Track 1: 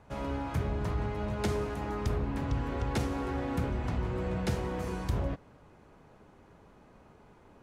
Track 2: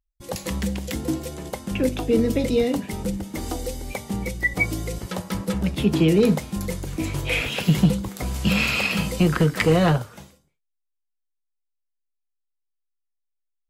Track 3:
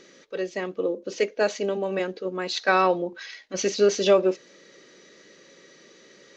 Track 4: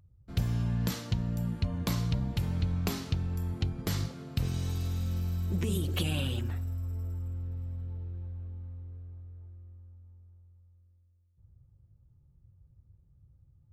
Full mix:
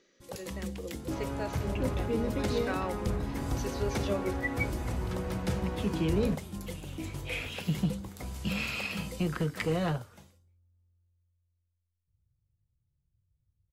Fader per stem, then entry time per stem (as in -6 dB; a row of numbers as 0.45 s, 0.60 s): -2.0 dB, -12.0 dB, -15.5 dB, -16.0 dB; 1.00 s, 0.00 s, 0.00 s, 0.70 s